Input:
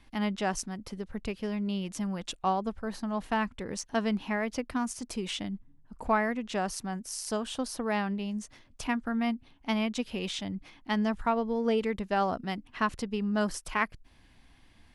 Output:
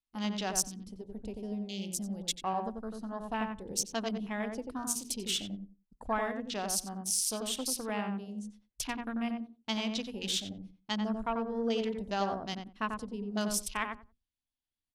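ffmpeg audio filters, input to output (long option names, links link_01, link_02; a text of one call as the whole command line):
ffmpeg -i in.wav -filter_complex "[0:a]aexciter=amount=4.5:drive=2.8:freq=2900,agate=range=-18dB:threshold=-43dB:ratio=16:detection=peak,bandreject=frequency=60:width_type=h:width=6,bandreject=frequency=120:width_type=h:width=6,bandreject=frequency=180:width_type=h:width=6,bandreject=frequency=240:width_type=h:width=6,bandreject=frequency=300:width_type=h:width=6,bandreject=frequency=360:width_type=h:width=6,bandreject=frequency=420:width_type=h:width=6,afwtdn=0.0141,asplit=2[link_01][link_02];[link_02]adelay=91,lowpass=frequency=1200:poles=1,volume=-3dB,asplit=2[link_03][link_04];[link_04]adelay=91,lowpass=frequency=1200:poles=1,volume=0.18,asplit=2[link_05][link_06];[link_06]adelay=91,lowpass=frequency=1200:poles=1,volume=0.18[link_07];[link_03][link_05][link_07]amix=inputs=3:normalize=0[link_08];[link_01][link_08]amix=inputs=2:normalize=0,volume=-6dB" out.wav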